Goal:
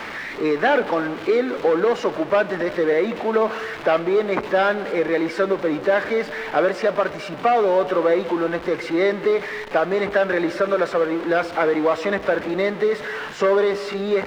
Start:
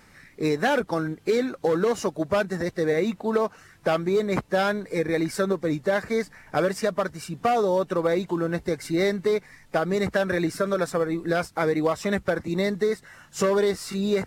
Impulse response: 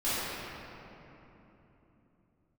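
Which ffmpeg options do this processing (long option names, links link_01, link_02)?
-filter_complex "[0:a]aeval=exprs='val(0)+0.5*0.0422*sgn(val(0))':channel_layout=same,acrossover=split=6300[link_01][link_02];[link_02]acompressor=threshold=-45dB:ratio=4:attack=1:release=60[link_03];[link_01][link_03]amix=inputs=2:normalize=0,acrossover=split=270 3600:gain=0.141 1 0.158[link_04][link_05][link_06];[link_04][link_05][link_06]amix=inputs=3:normalize=0,asplit=2[link_07][link_08];[1:a]atrim=start_sample=2205,afade=type=out:start_time=0.44:duration=0.01,atrim=end_sample=19845[link_09];[link_08][link_09]afir=irnorm=-1:irlink=0,volume=-23.5dB[link_10];[link_07][link_10]amix=inputs=2:normalize=0,volume=3.5dB"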